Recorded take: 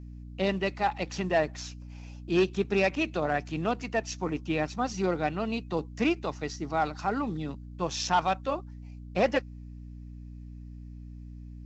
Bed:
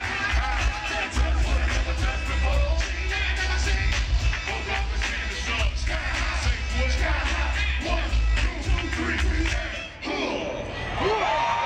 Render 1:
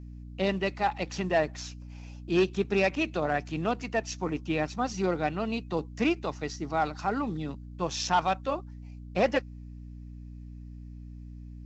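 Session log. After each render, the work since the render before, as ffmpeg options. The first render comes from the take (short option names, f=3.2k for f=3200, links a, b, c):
-af anull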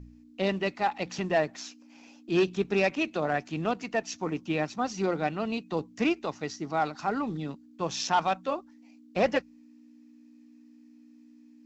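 -af "bandreject=f=60:t=h:w=4,bandreject=f=120:t=h:w=4,bandreject=f=180:t=h:w=4"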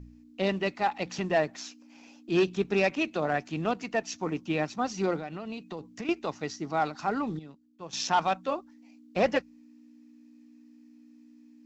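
-filter_complex "[0:a]asettb=1/sr,asplit=3[a][b][c];[a]atrim=end=5.184[d];[b]atrim=start=5.18:end=6.09,asetpts=PTS-STARTPTS,afade=t=in:d=0.004:c=qsin,afade=t=out:st=0.906:d=0.004:c=qsin,acompressor=threshold=-33dB:ratio=10:attack=3.2:release=140:knee=1:detection=peak[e];[c]atrim=start=6.086[f];[d][e]acrossfade=d=0.004:c1=hsin:c2=qsin[g];[g][f]acrossfade=d=0.004:c1=qsin:c2=hsin,asplit=3[h][i][j];[h]atrim=end=7.392[k];[i]atrim=start=7.388:end=7.932,asetpts=PTS-STARTPTS,volume=-11.5dB[l];[j]atrim=start=7.928[m];[k][l]acrossfade=d=0.004:c1=hsin:c2=hsin[n];[n][m]acrossfade=d=0.004:c1=hsin:c2=hsin"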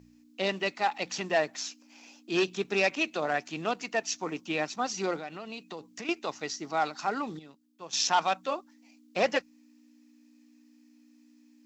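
-af "highpass=f=390:p=1,highshelf=f=3.5k:g=7.5"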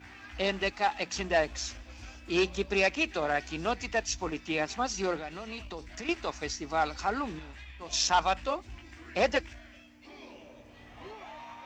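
-filter_complex "[1:a]volume=-22.5dB[a];[0:a][a]amix=inputs=2:normalize=0"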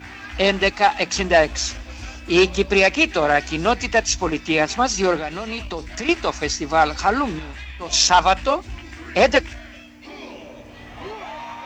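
-af "volume=12dB,alimiter=limit=-3dB:level=0:latency=1"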